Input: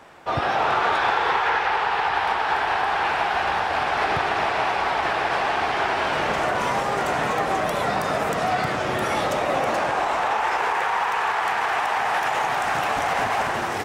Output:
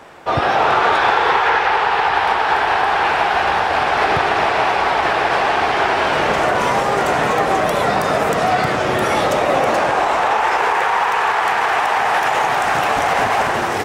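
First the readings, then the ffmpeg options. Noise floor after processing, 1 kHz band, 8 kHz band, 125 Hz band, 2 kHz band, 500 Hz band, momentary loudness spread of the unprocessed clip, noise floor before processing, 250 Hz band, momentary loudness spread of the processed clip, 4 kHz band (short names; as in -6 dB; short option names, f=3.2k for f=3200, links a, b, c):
-19 dBFS, +6.5 dB, +6.0 dB, +6.0 dB, +6.0 dB, +7.5 dB, 3 LU, -26 dBFS, +7.0 dB, 2 LU, +6.0 dB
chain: -af "equalizer=f=440:w=1.7:g=2.5,volume=6dB"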